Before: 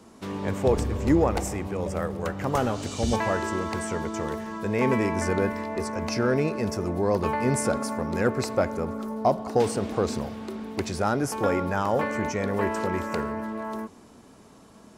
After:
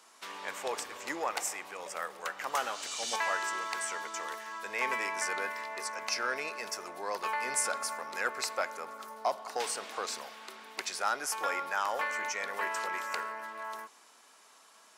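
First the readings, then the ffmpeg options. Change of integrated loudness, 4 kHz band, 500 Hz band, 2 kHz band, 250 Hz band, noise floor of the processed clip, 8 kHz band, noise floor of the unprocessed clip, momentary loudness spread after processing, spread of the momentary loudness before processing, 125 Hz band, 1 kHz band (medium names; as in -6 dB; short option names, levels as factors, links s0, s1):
-7.5 dB, +1.0 dB, -14.0 dB, 0.0 dB, -25.0 dB, -60 dBFS, +1.0 dB, -51 dBFS, 9 LU, 8 LU, under -35 dB, -4.5 dB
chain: -af "highpass=1200,volume=1.12"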